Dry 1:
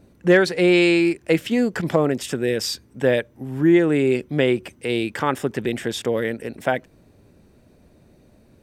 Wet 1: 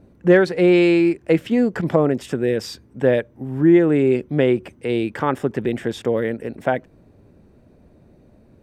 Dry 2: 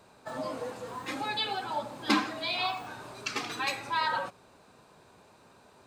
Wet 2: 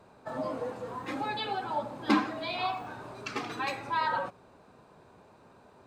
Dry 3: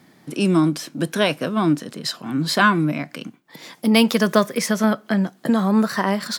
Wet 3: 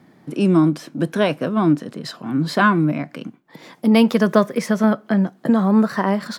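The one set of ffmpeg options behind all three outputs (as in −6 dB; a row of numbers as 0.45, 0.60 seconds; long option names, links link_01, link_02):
-af "highshelf=frequency=2300:gain=-12,volume=2.5dB"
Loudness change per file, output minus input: +1.5, −0.5, +1.5 LU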